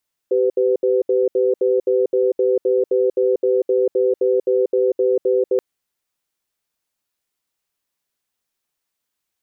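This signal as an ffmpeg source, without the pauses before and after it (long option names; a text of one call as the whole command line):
ffmpeg -f lavfi -i "aevalsrc='0.15*(sin(2*PI*387*t)+sin(2*PI*504*t))*clip(min(mod(t,0.26),0.19-mod(t,0.26))/0.005,0,1)':duration=5.28:sample_rate=44100" out.wav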